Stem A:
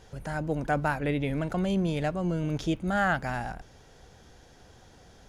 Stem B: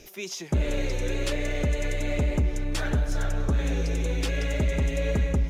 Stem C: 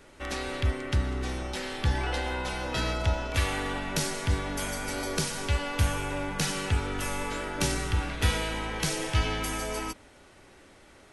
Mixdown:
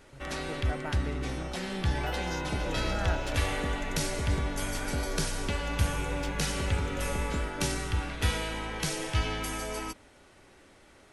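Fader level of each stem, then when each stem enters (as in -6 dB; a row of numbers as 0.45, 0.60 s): -11.5, -9.0, -2.5 dB; 0.00, 2.00, 0.00 s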